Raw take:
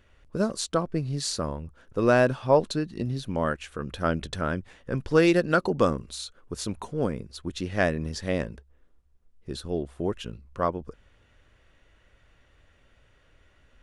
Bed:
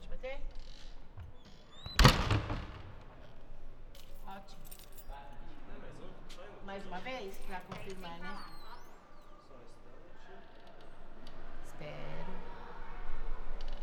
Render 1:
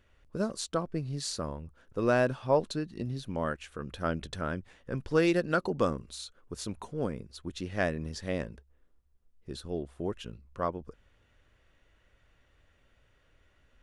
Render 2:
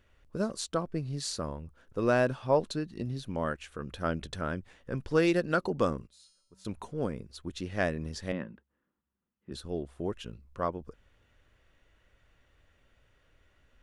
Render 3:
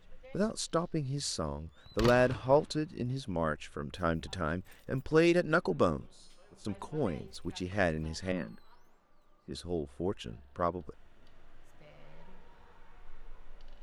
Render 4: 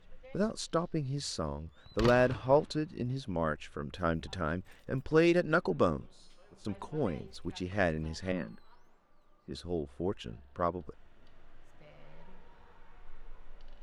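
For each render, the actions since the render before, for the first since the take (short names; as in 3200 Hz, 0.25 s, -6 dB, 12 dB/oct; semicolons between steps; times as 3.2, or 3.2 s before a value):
gain -5.5 dB
6.07–6.65 resonator 190 Hz, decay 0.83 s, harmonics odd, mix 90%; 8.32–9.52 speaker cabinet 180–2900 Hz, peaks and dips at 200 Hz +6 dB, 440 Hz -9 dB, 670 Hz -9 dB, 2300 Hz -6 dB
add bed -11 dB
high shelf 9300 Hz -11.5 dB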